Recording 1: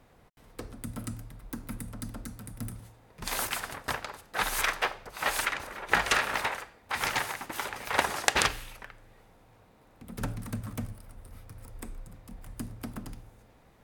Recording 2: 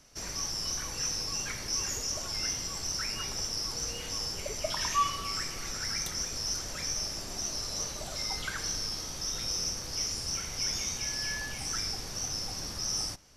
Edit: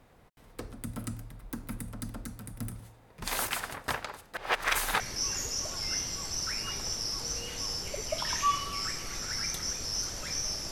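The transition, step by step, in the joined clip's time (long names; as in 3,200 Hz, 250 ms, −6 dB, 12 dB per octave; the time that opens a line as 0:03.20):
recording 1
0:04.37–0:05.00: reverse
0:05.00: continue with recording 2 from 0:01.52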